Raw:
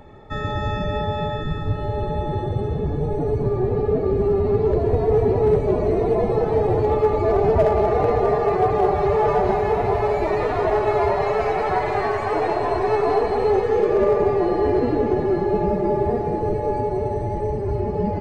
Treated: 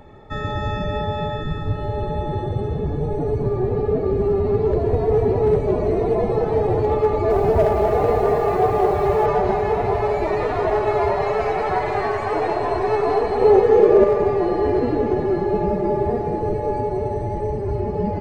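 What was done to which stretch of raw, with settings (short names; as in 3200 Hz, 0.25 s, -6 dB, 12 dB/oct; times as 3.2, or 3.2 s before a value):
7.03–9.26 lo-fi delay 0.271 s, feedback 55%, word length 7-bit, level -9.5 dB
13.41–14.04 bell 420 Hz +6 dB 2.5 oct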